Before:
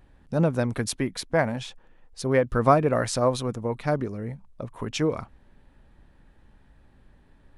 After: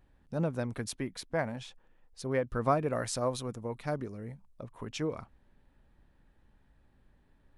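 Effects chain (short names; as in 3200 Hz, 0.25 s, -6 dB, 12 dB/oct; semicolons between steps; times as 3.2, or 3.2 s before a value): 2.79–4.62 high shelf 6100 Hz +6.5 dB; gain -9 dB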